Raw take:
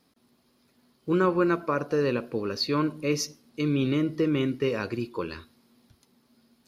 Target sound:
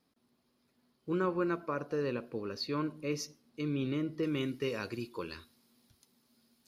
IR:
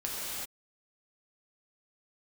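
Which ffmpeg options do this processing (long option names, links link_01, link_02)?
-af "asetnsamples=nb_out_samples=441:pad=0,asendcmd='4.23 highshelf g 9',highshelf=frequency=3300:gain=-2,volume=-8.5dB"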